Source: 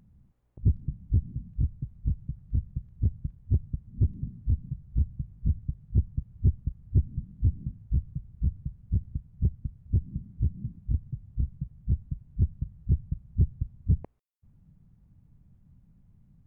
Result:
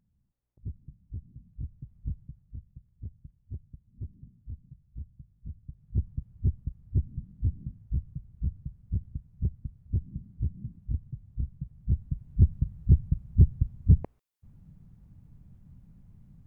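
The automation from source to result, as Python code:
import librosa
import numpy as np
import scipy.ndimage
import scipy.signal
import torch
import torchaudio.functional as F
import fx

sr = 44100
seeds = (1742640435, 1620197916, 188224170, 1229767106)

y = fx.gain(x, sr, db=fx.line((1.16, -15.0), (2.12, -6.0), (2.56, -15.0), (5.55, -15.0), (6.01, -3.5), (11.55, -3.5), (12.44, 5.0)))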